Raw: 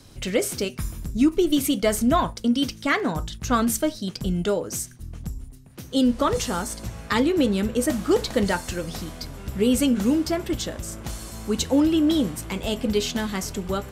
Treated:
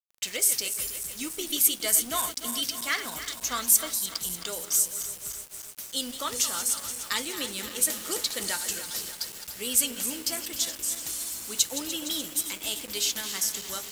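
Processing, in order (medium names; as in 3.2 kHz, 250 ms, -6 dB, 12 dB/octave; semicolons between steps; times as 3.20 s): backward echo that repeats 148 ms, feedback 81%, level -11 dB; pre-emphasis filter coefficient 0.97; small samples zeroed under -46 dBFS; trim +6.5 dB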